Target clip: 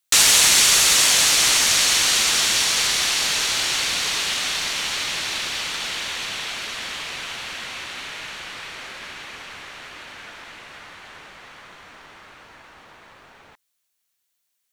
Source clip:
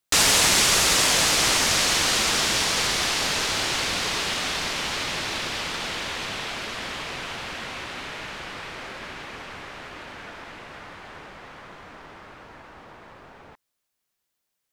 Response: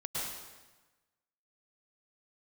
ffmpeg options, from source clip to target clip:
-af "tiltshelf=frequency=1400:gain=-6,bandreject=frequency=5000:width=18"

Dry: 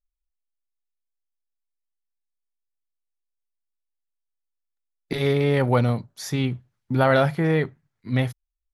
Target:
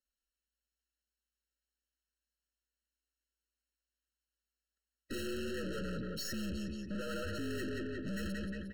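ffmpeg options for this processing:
ffmpeg -i in.wav -filter_complex "[0:a]alimiter=limit=-17dB:level=0:latency=1:release=255,equalizer=frequency=290:width_type=o:width=0.77:gain=9,asettb=1/sr,asplit=3[link_01][link_02][link_03];[link_01]atrim=end=5.344[link_04];[link_02]atrim=start=5.34:end=7.35,asetpts=PTS-STARTPTS,afade=type=in:duration=0.004:curve=qsin,afade=type=out:start_time=2.006:duration=0.004:curve=qsin,acompressor=threshold=-31dB:ratio=3[link_05];[link_03]atrim=start=7.346[link_06];[link_04][link_05]acrossfade=duration=0.004:curve1=hsin:curve2=qsin[link_07];[link_07][link_06]acrossfade=duration=0.004:curve1=qsin:curve2=hsin,equalizer=frequency=7400:width_type=o:width=2.7:gain=11.5,asplit=2[link_08][link_09];[link_09]highpass=frequency=720:poles=1,volume=24dB,asoftclip=type=tanh:threshold=-11dB[link_10];[link_08][link_10]amix=inputs=2:normalize=0,lowpass=frequency=1900:poles=1,volume=-6dB,afreqshift=-57,afftdn=noise_reduction=15:noise_floor=-33,asplit=2[link_11][link_12];[link_12]aecho=0:1:178|356|534|712:0.251|0.103|0.0422|0.0173[link_13];[link_11][link_13]amix=inputs=2:normalize=0,aeval=exprs='(tanh(112*val(0)+0.45)-tanh(0.45))/112':channel_layout=same,afftfilt=real='re*eq(mod(floor(b*sr/1024/640),2),0)':imag='im*eq(mod(floor(b*sr/1024/640),2),0)':win_size=1024:overlap=0.75,volume=3.5dB" out.wav

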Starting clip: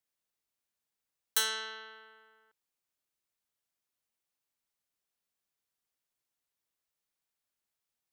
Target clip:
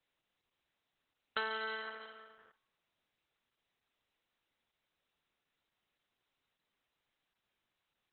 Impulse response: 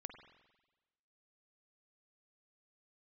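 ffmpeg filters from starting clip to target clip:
-filter_complex "[0:a]asettb=1/sr,asplit=3[link_01][link_02][link_03];[link_01]atrim=end=1.384[link_04];[link_02]atrim=start=1.38:end=2.01,asetpts=PTS-STARTPTS,afade=type=in:duration=0.004:curve=qsin,afade=type=out:start_time=0.626:duration=0.004:curve=qsin,equalizer=frequency=3500:width_type=o:width=0.58:gain=-8.5[link_05];[link_03]atrim=start=2.006[link_06];[link_04][link_05]acrossfade=duration=0.004:curve1=hsin:curve2=qsin[link_07];[link_07][link_06]acrossfade=duration=0.004:curve1=qsin:curve2=hsin,acrossover=split=470|2300[link_08][link_09][link_10];[link_08]acompressor=threshold=-56dB:ratio=4[link_11];[link_09]acompressor=threshold=-43dB:ratio=4[link_12];[link_10]acompressor=threshold=-49dB:ratio=4[link_13];[link_11][link_12][link_13]amix=inputs=3:normalize=0,asplit=2[link_14][link_15];[1:a]atrim=start_sample=2205,lowpass=4700,adelay=47[link_16];[link_15][link_16]afir=irnorm=-1:irlink=0,volume=-12.5dB[link_17];[link_14][link_17]amix=inputs=2:normalize=0,volume=9.5dB" -ar 48000 -c:a libopus -b:a 8k

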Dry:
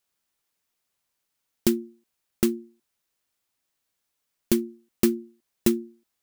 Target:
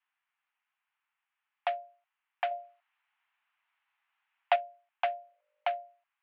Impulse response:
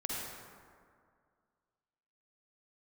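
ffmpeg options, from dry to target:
-filter_complex "[0:a]asettb=1/sr,asplit=3[link_01][link_02][link_03];[link_01]atrim=end=5.184[link_04];[link_02]atrim=start=5.18:end=5.83,asetpts=PTS-STARTPTS,afade=type=in:duration=0.004:curve=qsin,afade=type=out:start_time=0.646:duration=0.004:curve=qsin,aeval=exprs='val(0)+0.00501*(sin(2*PI*50*n/s)+sin(2*PI*2*50*n/s)/2+sin(2*PI*3*50*n/s)/3+sin(2*PI*4*50*n/s)/4+sin(2*PI*5*50*n/s)/5)':channel_layout=same[link_05];[link_03]atrim=start=5.826[link_06];[link_04][link_05]acrossfade=duration=0.004:curve1=hsin:curve2=qsin[link_07];[link_07][link_06]acrossfade=duration=0.004:curve1=qsin:curve2=hsin,highpass=frequency=450:width_type=q:width=0.5412,highpass=frequency=450:width_type=q:width=1.307,lowpass=frequency=2500:width_type=q:width=0.5176,lowpass=frequency=2500:width_type=q:width=0.7071,lowpass=frequency=2500:width_type=q:width=1.932,afreqshift=350,asettb=1/sr,asplit=3[link_08][link_09][link_10];[link_08]atrim=end=2.514[link_11];[link_09]atrim=start=2.51:end=4.56,asetpts=PTS-STARTPTS,afade=type=in:duration=0.004:curve=qsin,afade=type=out:start_time=2.046:duration=0.004:curve=qsin,acontrast=58[link_12];[link_10]atrim=start=4.556[link_13];[link_11][link_12]acrossfade=duration=0.004:curve1=hsin:curve2=qsin[link_14];[link_14][link_13]acrossfade=duration=0.004:curve1=qsin:curve2=hsin,volume=2dB"

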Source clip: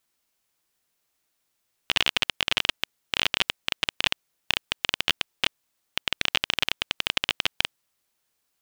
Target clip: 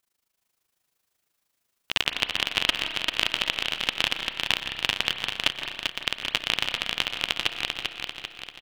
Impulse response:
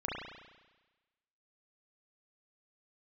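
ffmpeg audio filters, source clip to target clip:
-filter_complex "[0:a]tremolo=f=26:d=0.919,aecho=1:1:393|786|1179|1572|1965|2358|2751:0.596|0.31|0.161|0.0838|0.0436|0.0226|0.0118,asplit=2[link_01][link_02];[1:a]atrim=start_sample=2205,asetrate=48510,aresample=44100,adelay=123[link_03];[link_02][link_03]afir=irnorm=-1:irlink=0,volume=-12dB[link_04];[link_01][link_04]amix=inputs=2:normalize=0,volume=2dB"

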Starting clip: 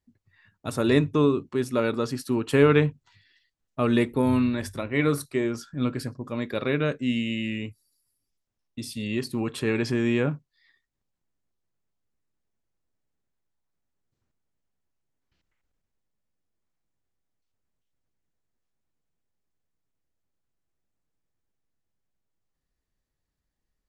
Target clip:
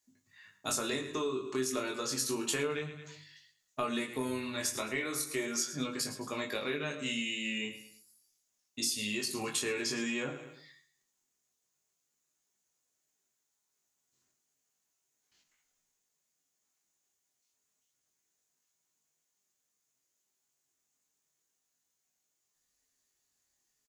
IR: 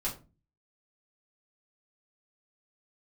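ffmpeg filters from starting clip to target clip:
-filter_complex "[0:a]highpass=frequency=460:poles=1,highshelf=frequency=2900:gain=10.5,aecho=1:1:108|216|324:0.178|0.064|0.023,flanger=delay=19.5:depth=4.1:speed=0.32,acompressor=threshold=-35dB:ratio=10,equalizer=frequency=6700:width_type=o:width=0.37:gain=10.5,asplit=2[link_01][link_02];[1:a]atrim=start_sample=2205[link_03];[link_02][link_03]afir=irnorm=-1:irlink=0,volume=-6dB[link_04];[link_01][link_04]amix=inputs=2:normalize=0"

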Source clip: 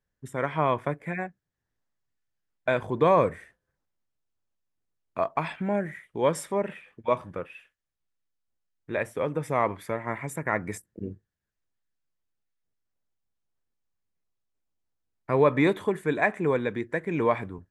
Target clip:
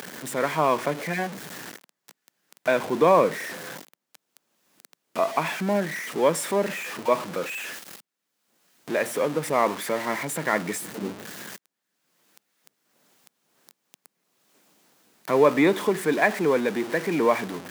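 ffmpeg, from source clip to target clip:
ffmpeg -i in.wav -af "aeval=exprs='val(0)+0.5*0.0282*sgn(val(0))':channel_layout=same,highpass=frequency=180:width=0.5412,highpass=frequency=180:width=1.3066,acompressor=mode=upward:threshold=-40dB:ratio=2.5,volume=2dB" out.wav

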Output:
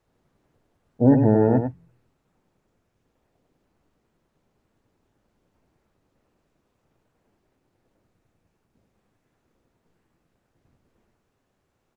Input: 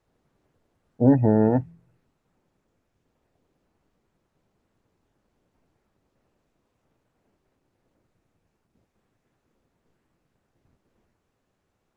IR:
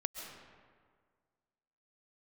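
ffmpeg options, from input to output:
-filter_complex "[0:a]asplit=2[link_01][link_02];[link_02]adelay=99.13,volume=-7dB,highshelf=frequency=4000:gain=-2.23[link_03];[link_01][link_03]amix=inputs=2:normalize=0,volume=1dB"

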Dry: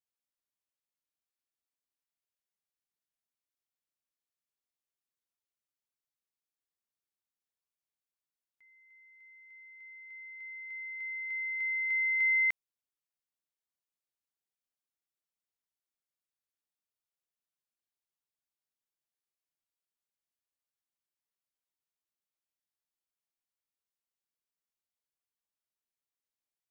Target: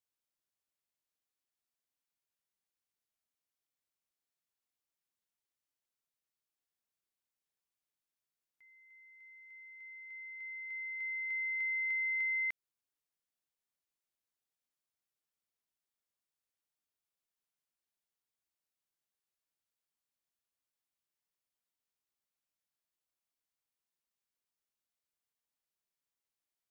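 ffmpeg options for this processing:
ffmpeg -i in.wav -af "acompressor=threshold=-33dB:ratio=6" out.wav

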